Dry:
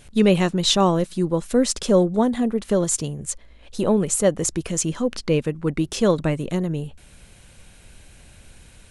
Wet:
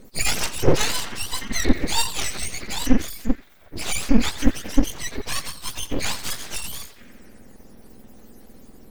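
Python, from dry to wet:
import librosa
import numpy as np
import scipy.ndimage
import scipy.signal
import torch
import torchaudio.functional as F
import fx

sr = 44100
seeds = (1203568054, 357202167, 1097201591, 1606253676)

y = fx.octave_mirror(x, sr, pivot_hz=1000.0)
y = fx.echo_banded(y, sr, ms=87, feedback_pct=76, hz=1500.0, wet_db=-11.0)
y = np.abs(y)
y = F.gain(torch.from_numpy(y), 1.0).numpy()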